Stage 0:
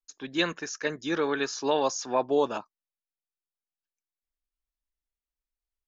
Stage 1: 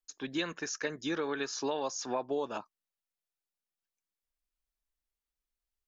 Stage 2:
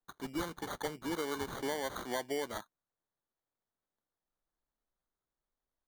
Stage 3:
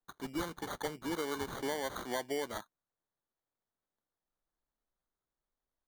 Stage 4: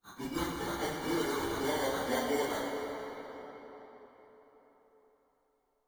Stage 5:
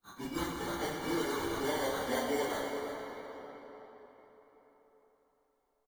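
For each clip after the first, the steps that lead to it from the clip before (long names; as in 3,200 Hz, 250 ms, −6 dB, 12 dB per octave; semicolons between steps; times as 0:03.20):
downward compressor 4 to 1, threshold −31 dBFS, peak gain reduction 10.5 dB
decimation without filtering 17×; level −3 dB
no processing that can be heard
random phases in long frames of 100 ms; convolution reverb RT60 4.5 s, pre-delay 40 ms, DRR 0.5 dB; level +2 dB
tuned comb filter 570 Hz, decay 0.48 s; single-tap delay 339 ms −13.5 dB; level +6.5 dB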